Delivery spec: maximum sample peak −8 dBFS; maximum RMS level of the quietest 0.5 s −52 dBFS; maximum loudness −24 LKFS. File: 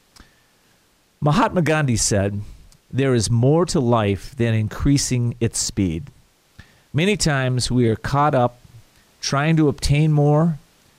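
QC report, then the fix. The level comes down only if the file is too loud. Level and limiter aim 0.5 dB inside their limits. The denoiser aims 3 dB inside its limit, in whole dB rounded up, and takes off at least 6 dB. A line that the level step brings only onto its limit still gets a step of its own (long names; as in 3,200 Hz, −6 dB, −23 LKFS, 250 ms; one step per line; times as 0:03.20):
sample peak −7.5 dBFS: out of spec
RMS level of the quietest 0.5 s −59 dBFS: in spec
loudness −19.5 LKFS: out of spec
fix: level −5 dB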